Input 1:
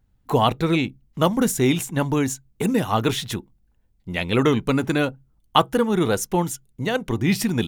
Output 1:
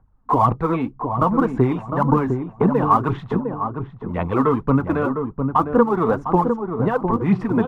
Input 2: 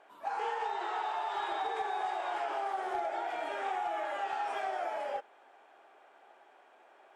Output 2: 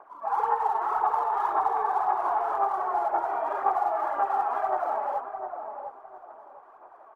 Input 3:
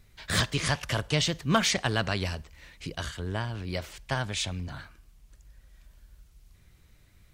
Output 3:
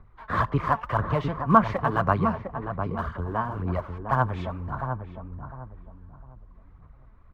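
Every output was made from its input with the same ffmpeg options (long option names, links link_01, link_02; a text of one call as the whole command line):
ffmpeg -i in.wav -filter_complex "[0:a]acrossover=split=240[link_01][link_02];[link_02]alimiter=limit=-13.5dB:level=0:latency=1:release=302[link_03];[link_01][link_03]amix=inputs=2:normalize=0,lowpass=frequency=1100:width_type=q:width=4.4,aphaser=in_gain=1:out_gain=1:delay=4.6:decay=0.53:speed=1.9:type=sinusoidal,asplit=2[link_04][link_05];[link_05]adelay=705,lowpass=frequency=810:poles=1,volume=-5dB,asplit=2[link_06][link_07];[link_07]adelay=705,lowpass=frequency=810:poles=1,volume=0.34,asplit=2[link_08][link_09];[link_09]adelay=705,lowpass=frequency=810:poles=1,volume=0.34,asplit=2[link_10][link_11];[link_11]adelay=705,lowpass=frequency=810:poles=1,volume=0.34[link_12];[link_04][link_06][link_08][link_10][link_12]amix=inputs=5:normalize=0" out.wav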